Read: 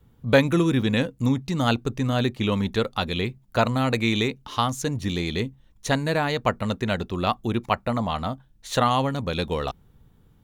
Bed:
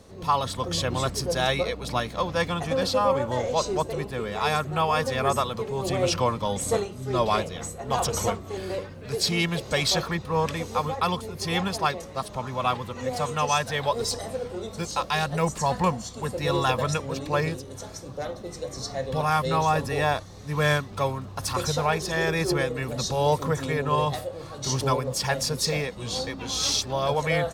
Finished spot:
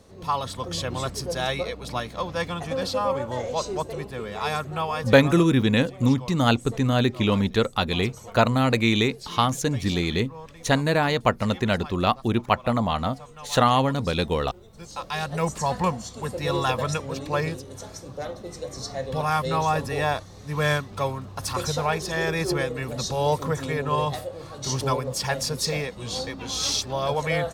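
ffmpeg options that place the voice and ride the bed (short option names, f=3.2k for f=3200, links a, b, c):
-filter_complex "[0:a]adelay=4800,volume=2dB[a];[1:a]volume=14dB,afade=t=out:st=4.72:d=0.77:silence=0.188365,afade=t=in:st=14.71:d=0.72:silence=0.149624[b];[a][b]amix=inputs=2:normalize=0"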